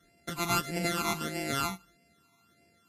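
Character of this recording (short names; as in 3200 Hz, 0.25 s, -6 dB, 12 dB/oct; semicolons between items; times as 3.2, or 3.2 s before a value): a buzz of ramps at a fixed pitch in blocks of 64 samples; phasing stages 12, 1.6 Hz, lowest notch 520–1200 Hz; Vorbis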